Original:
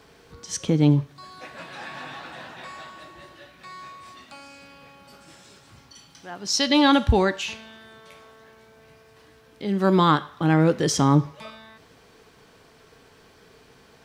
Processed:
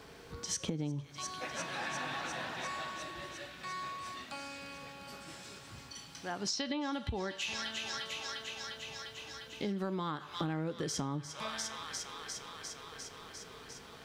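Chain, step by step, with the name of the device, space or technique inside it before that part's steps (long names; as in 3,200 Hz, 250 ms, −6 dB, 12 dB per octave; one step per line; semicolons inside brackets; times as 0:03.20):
0:06.28–0:06.92: treble cut that deepens with the level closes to 2,900 Hz, closed at −17 dBFS
delay with a high-pass on its return 351 ms, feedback 78%, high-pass 2,100 Hz, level −10 dB
serial compression, leveller first (downward compressor 2.5 to 1, threshold −21 dBFS, peak gain reduction 6.5 dB; downward compressor 10 to 1, threshold −33 dBFS, peak gain reduction 15.5 dB)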